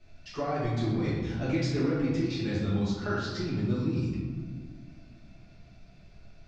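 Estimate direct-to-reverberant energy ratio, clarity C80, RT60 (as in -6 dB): -10.0 dB, 2.5 dB, 1.6 s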